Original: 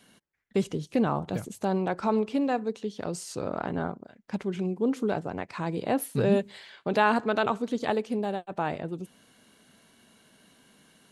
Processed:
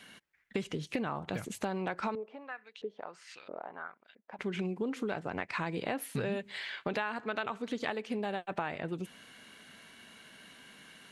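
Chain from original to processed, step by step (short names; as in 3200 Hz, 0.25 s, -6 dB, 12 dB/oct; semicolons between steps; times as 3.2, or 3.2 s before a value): bell 2100 Hz +10.5 dB 1.8 oct; compressor 10:1, threshold -31 dBFS, peak gain reduction 19 dB; 2.15–4.39 LFO band-pass saw up 1.5 Hz 390–3900 Hz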